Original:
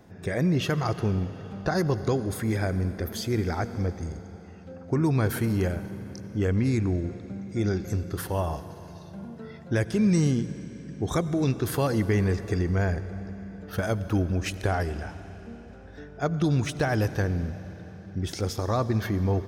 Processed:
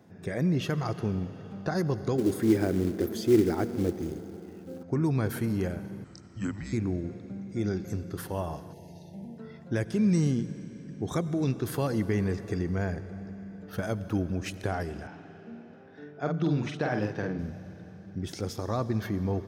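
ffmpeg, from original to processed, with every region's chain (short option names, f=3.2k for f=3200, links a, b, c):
-filter_complex "[0:a]asettb=1/sr,asplit=3[a][b][c];[a]atrim=end=2.184[d];[b]atrim=start=2.18:end=4.83,asetpts=PTS-STARTPTS,afade=t=in:d=0.004:c=qsin,afade=t=out:st=2.646:d=0.004:c=qsin,equalizer=f=340:t=o:w=0.77:g=13.5,acrusher=bits=5:mode=log:mix=0:aa=0.000001[e];[c]atrim=start=4.826[f];[d][e]acrossfade=d=0.004:c1=hsin:c2=qsin[g];[g][f]acrossfade=d=0.004:c1=qsin:c2=hsin,asettb=1/sr,asplit=3[h][i][j];[h]atrim=end=6.044[k];[i]atrim=start=6.04:end=6.73,asetpts=PTS-STARTPTS,afade=t=in:d=0.004:c=qsin,afade=t=out:st=0.686:d=0.004:c=qsin,acrossover=split=210 5800:gain=0.251 1 0.2[l][m][n];[l][m][n]amix=inputs=3:normalize=0,afreqshift=-200,lowpass=f=7.8k:t=q:w=14[o];[j]atrim=start=6.726[p];[k][o]acrossfade=d=0.004:c1=hsin:c2=qsin[q];[q][p]acrossfade=d=0.004:c1=qsin:c2=hsin,asettb=1/sr,asplit=3[r][s][t];[r]atrim=end=8.734[u];[s]atrim=start=8.73:end=9.38,asetpts=PTS-STARTPTS,afade=t=in:d=0.004:c=qsin,afade=t=out:st=0.646:d=0.004:c=qsin,asuperstop=centerf=1300:order=20:qfactor=1.6,highshelf=f=10k:g=7.5[v];[t]atrim=start=9.376[w];[u][v]acrossfade=d=0.004:c1=hsin:c2=qsin[x];[x][w]acrossfade=d=0.004:c1=qsin:c2=hsin,asettb=1/sr,asplit=3[y][z][aa];[y]atrim=end=15.074[ab];[z]atrim=start=15.07:end=17.39,asetpts=PTS-STARTPTS,afade=t=in:d=0.004:c=qsin,afade=t=out:st=2.316:d=0.004:c=qsin,highpass=150,lowpass=4.2k,asplit=2[ac][ad];[ad]adelay=48,volume=-4dB[ae];[ac][ae]amix=inputs=2:normalize=0,atrim=end_sample=102312[af];[aa]atrim=start=17.386[ag];[ab][af]acrossfade=d=0.004:c1=hsin:c2=qsin[ah];[ah][ag]acrossfade=d=0.004:c1=qsin:c2=hsin,highpass=150,lowshelf=f=210:g=9,volume=-5.5dB"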